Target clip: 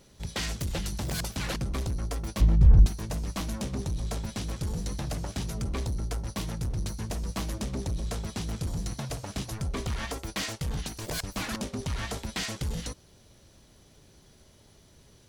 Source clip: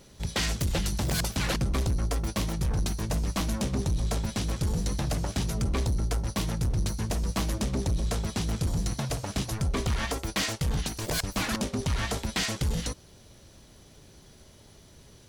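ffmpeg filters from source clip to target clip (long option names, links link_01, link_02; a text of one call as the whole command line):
ffmpeg -i in.wav -filter_complex "[0:a]asplit=3[link_01][link_02][link_03];[link_01]afade=type=out:start_time=2.4:duration=0.02[link_04];[link_02]aemphasis=mode=reproduction:type=riaa,afade=type=in:start_time=2.4:duration=0.02,afade=type=out:start_time=2.85:duration=0.02[link_05];[link_03]afade=type=in:start_time=2.85:duration=0.02[link_06];[link_04][link_05][link_06]amix=inputs=3:normalize=0,volume=-4dB" out.wav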